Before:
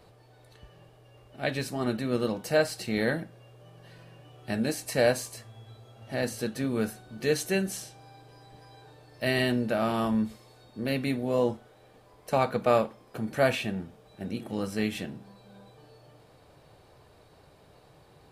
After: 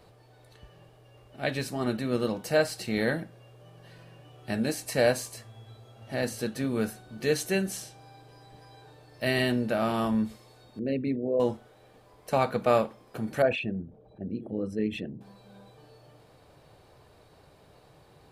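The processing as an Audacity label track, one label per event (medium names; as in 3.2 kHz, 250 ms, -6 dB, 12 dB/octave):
10.790000	11.400000	resonances exaggerated exponent 2
13.420000	15.210000	resonances exaggerated exponent 2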